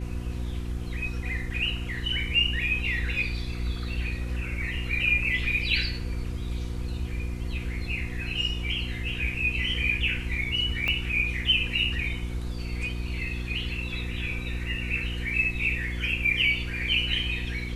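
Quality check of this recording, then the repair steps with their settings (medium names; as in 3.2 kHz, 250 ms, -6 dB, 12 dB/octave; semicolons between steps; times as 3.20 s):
hum 60 Hz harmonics 6 -33 dBFS
10.88 s: pop -14 dBFS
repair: de-click; de-hum 60 Hz, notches 6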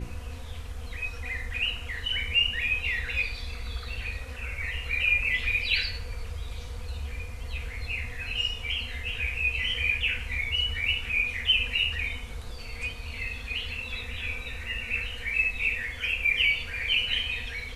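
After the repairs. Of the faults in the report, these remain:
10.88 s: pop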